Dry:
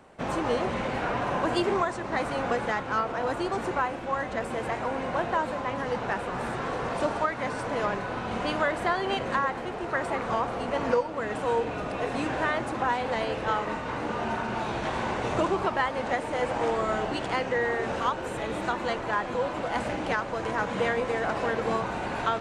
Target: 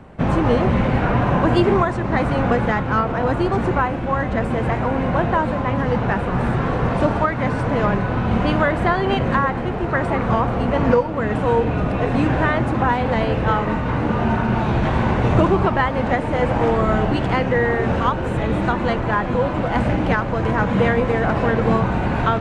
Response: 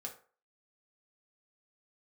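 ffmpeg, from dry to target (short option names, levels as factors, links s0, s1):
-af "bass=f=250:g=13,treble=f=4000:g=-10,volume=2.24"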